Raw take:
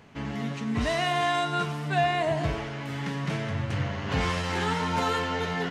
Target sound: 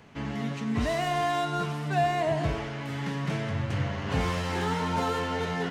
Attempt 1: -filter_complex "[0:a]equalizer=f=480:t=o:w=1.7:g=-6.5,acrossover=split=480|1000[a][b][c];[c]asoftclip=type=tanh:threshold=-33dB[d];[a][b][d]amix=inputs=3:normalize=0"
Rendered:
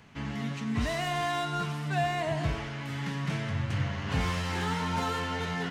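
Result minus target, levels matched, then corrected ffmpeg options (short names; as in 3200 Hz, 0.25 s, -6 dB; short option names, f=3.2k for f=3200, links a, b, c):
500 Hz band -3.0 dB
-filter_complex "[0:a]acrossover=split=480|1000[a][b][c];[c]asoftclip=type=tanh:threshold=-33dB[d];[a][b][d]amix=inputs=3:normalize=0"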